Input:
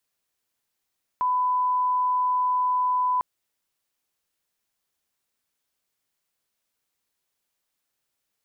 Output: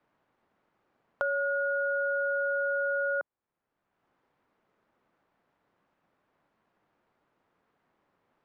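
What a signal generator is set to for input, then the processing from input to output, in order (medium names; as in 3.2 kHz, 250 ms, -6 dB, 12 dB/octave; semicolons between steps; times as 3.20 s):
line-up tone -20 dBFS 2.00 s
low-pass 1 kHz 12 dB/octave; ring modulator 440 Hz; three bands compressed up and down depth 70%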